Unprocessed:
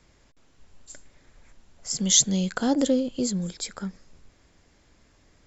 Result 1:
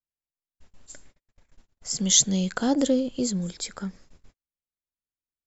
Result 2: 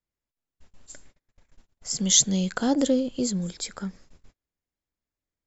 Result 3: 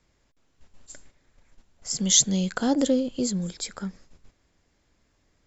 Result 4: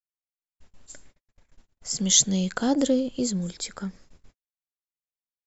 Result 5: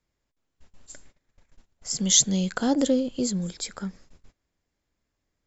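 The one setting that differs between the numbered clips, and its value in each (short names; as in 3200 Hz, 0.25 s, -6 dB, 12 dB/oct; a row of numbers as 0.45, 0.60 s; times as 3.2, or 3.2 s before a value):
gate, range: -45, -32, -8, -59, -20 dB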